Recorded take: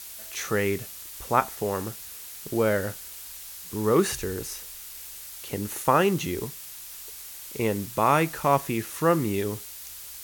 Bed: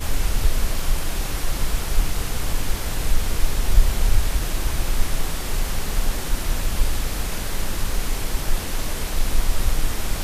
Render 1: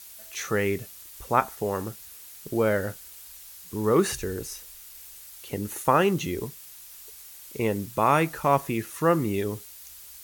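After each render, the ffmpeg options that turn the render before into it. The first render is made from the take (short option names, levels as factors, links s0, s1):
-af "afftdn=nr=6:nf=-42"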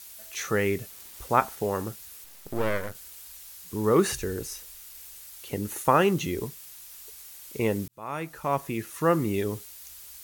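-filter_complex "[0:a]asettb=1/sr,asplit=3[s0][s1][s2];[s0]atrim=end=0.904[s3];[s1]atrim=start=0.9:end=1.66,asetpts=PTS-STARTPTS,afade=t=in:d=0.004:c=qsin,afade=t=out:st=0.756:d=0.004:c=qsin,acrusher=bits=6:mix=0:aa=0.5[s4];[s2]atrim=start=1.656[s5];[s3][s4]acrossfade=d=0.004:c1=hsin:c2=qsin[s6];[s6][s5]acrossfade=d=0.004:c1=qsin:c2=hsin,asettb=1/sr,asplit=3[s7][s8][s9];[s7]atrim=end=2.244[s10];[s8]atrim=start=2.24:end=2.95,asetpts=PTS-STARTPTS,afade=t=in:d=0.004:c=qsin,afade=t=out:st=0.706:d=0.004:c=qsin,aeval=exprs='max(val(0),0)':c=same[s11];[s9]atrim=start=2.946[s12];[s10][s11]acrossfade=d=0.004:c1=hsin:c2=qsin[s13];[s13][s12]acrossfade=d=0.004:c1=qsin:c2=hsin,asplit=2[s14][s15];[s14]atrim=end=7.88,asetpts=PTS-STARTPTS,afade=t=out:st=7.876:d=0.004:c=hsin[s16];[s15]atrim=start=7.88,asetpts=PTS-STARTPTS,afade=t=in:d=1.74:c=qsin[s17];[s16][s17]concat=n=2:v=0:a=1"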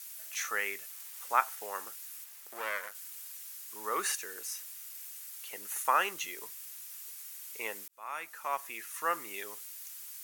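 -af "highpass=1200,equalizer=f=3900:w=1.4:g=-4.5"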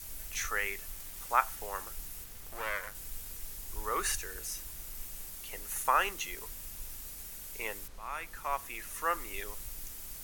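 -filter_complex "[1:a]volume=0.0447[s0];[0:a][s0]amix=inputs=2:normalize=0"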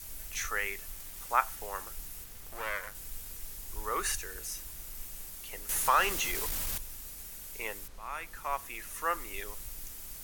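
-filter_complex "[0:a]asettb=1/sr,asplit=3[s0][s1][s2];[s0]atrim=end=5.694[s3];[s1]atrim=start=5.69:end=6.78,asetpts=PTS-STARTPTS,afade=t=in:d=0.004:c=qsin,afade=t=out:st=1.086:d=0.004:c=qsin,aeval=exprs='val(0)+0.5*0.0299*sgn(val(0))':c=same[s4];[s2]atrim=start=6.776[s5];[s3][s4]acrossfade=d=0.004:c1=hsin:c2=qsin[s6];[s6][s5]acrossfade=d=0.004:c1=qsin:c2=hsin"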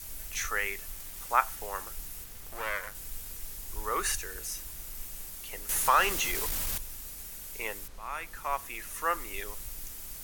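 -af "volume=1.26"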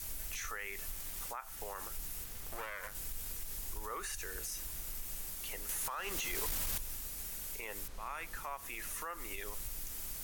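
-af "acompressor=threshold=0.0251:ratio=6,alimiter=level_in=2.24:limit=0.0631:level=0:latency=1:release=90,volume=0.447"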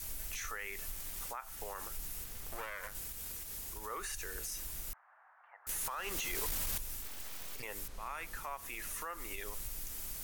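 -filter_complex "[0:a]asettb=1/sr,asplit=3[s0][s1][s2];[s0]atrim=end=2.994[s3];[s1]atrim=start=2.99:end=3.98,asetpts=PTS-STARTPTS,afade=t=in:d=0.004:c=qsin,afade=t=out:st=0.986:d=0.004:c=qsin,highpass=f=60:p=1[s4];[s2]atrim=start=3.976[s5];[s3][s4]acrossfade=d=0.004:c1=hsin:c2=qsin[s6];[s6][s5]acrossfade=d=0.004:c1=qsin:c2=hsin,asettb=1/sr,asplit=3[s7][s8][s9];[s7]atrim=end=4.934[s10];[s8]atrim=start=4.93:end=5.67,asetpts=PTS-STARTPTS,afade=t=in:d=0.004:c=qsin,afade=t=out:st=0.736:d=0.004:c=qsin,asuperpass=centerf=1100:order=8:qfactor=1.1[s11];[s9]atrim=start=5.666[s12];[s10][s11]acrossfade=d=0.004:c1=hsin:c2=qsin[s13];[s13][s12]acrossfade=d=0.004:c1=qsin:c2=hsin,asettb=1/sr,asplit=3[s14][s15][s16];[s14]atrim=end=7.024[s17];[s15]atrim=start=7.02:end=7.63,asetpts=PTS-STARTPTS,afade=t=in:d=0.004:c=qsin,afade=t=out:st=0.606:d=0.004:c=qsin,aeval=exprs='abs(val(0))':c=same[s18];[s16]atrim=start=7.626[s19];[s17][s18]acrossfade=d=0.004:c1=hsin:c2=qsin[s20];[s20][s19]acrossfade=d=0.004:c1=qsin:c2=hsin"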